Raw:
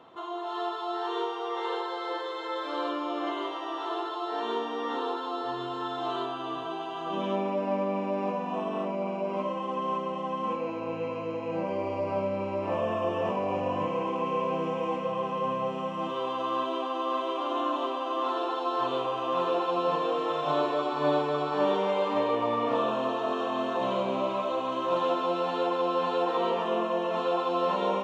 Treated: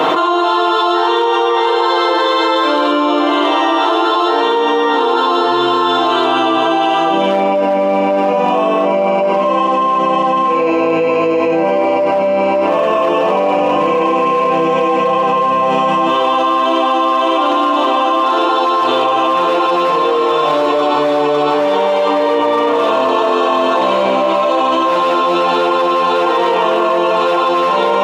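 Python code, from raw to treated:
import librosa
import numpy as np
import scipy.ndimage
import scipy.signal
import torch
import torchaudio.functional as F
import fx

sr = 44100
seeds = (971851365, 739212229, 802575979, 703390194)

p1 = 10.0 ** (-23.0 / 20.0) * (np.abs((x / 10.0 ** (-23.0 / 20.0) + 3.0) % 4.0 - 2.0) - 1.0)
p2 = x + F.gain(torch.from_numpy(p1), -3.5).numpy()
p3 = scipy.signal.sosfilt(scipy.signal.butter(2, 280.0, 'highpass', fs=sr, output='sos'), p2)
p4 = p3 + 0.5 * np.pad(p3, (int(6.5 * sr / 1000.0), 0))[:len(p3)]
p5 = fx.env_flatten(p4, sr, amount_pct=100)
y = F.gain(torch.from_numpy(p5), 6.0).numpy()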